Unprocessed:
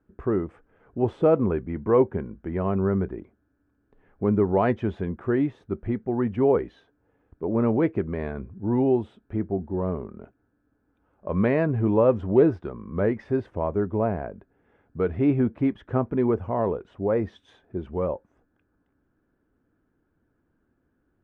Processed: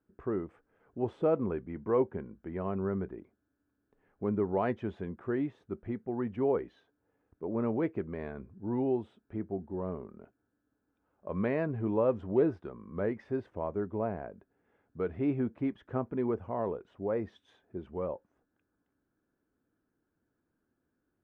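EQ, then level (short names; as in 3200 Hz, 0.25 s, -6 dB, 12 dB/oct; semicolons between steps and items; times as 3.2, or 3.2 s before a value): low shelf 79 Hz -10 dB; -8.0 dB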